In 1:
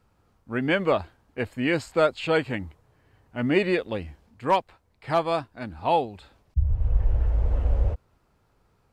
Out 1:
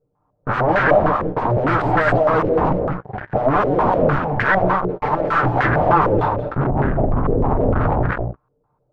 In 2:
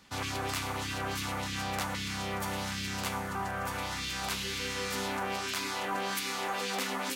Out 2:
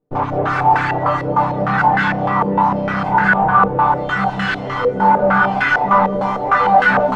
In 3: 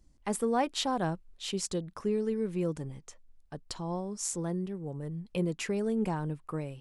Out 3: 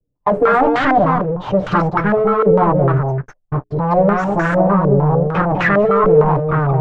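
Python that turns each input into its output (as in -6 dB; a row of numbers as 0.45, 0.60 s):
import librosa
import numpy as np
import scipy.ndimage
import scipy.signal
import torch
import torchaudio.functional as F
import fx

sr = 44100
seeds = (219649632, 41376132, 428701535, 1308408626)

y = fx.lower_of_two(x, sr, delay_ms=6.7)
y = fx.hum_notches(y, sr, base_hz=60, count=7)
y = fx.noise_reduce_blind(y, sr, reduce_db=13)
y = fx.peak_eq(y, sr, hz=120.0, db=6.5, octaves=0.6)
y = fx.over_compress(y, sr, threshold_db=-30.0, ratio=-0.5)
y = fx.leveller(y, sr, passes=5)
y = fx.fold_sine(y, sr, drive_db=8, ceiling_db=-15.5)
y = fx.doubler(y, sr, ms=15.0, db=-14)
y = y + 10.0 ** (-4.0 / 20.0) * np.pad(y, (int(201 * sr / 1000.0), 0))[:len(y)]
y = fx.filter_held_lowpass(y, sr, hz=6.6, low_hz=480.0, high_hz=1600.0)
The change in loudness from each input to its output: +8.0, +18.0, +18.5 LU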